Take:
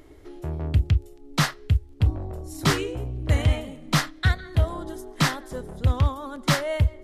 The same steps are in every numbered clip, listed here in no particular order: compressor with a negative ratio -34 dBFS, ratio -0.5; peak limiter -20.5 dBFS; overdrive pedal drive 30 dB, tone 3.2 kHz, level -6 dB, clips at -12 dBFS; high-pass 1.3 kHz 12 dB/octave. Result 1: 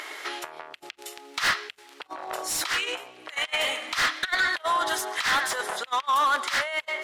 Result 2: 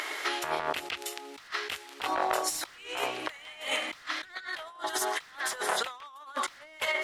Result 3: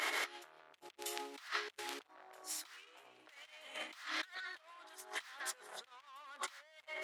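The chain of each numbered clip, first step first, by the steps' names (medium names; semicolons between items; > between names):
peak limiter > compressor with a negative ratio > high-pass > overdrive pedal; peak limiter > high-pass > overdrive pedal > compressor with a negative ratio; overdrive pedal > compressor with a negative ratio > peak limiter > high-pass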